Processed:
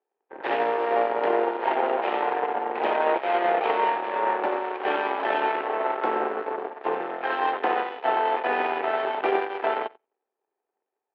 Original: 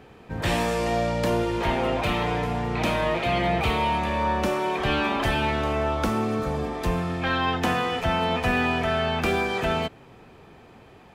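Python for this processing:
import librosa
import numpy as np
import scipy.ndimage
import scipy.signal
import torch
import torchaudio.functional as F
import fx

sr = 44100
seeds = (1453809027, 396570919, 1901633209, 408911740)

p1 = fx.octave_divider(x, sr, octaves=2, level_db=1.0)
p2 = p1 + fx.echo_feedback(p1, sr, ms=90, feedback_pct=27, wet_db=-9.5, dry=0)
p3 = fx.cheby_harmonics(p2, sr, harmonics=(2, 4, 7), levels_db=(-12, -27, -17), full_scale_db=-10.0)
y = fx.cabinet(p3, sr, low_hz=360.0, low_slope=24, high_hz=2500.0, hz=(400.0, 830.0, 1200.0, 2300.0), db=(6, 7, -3, -5))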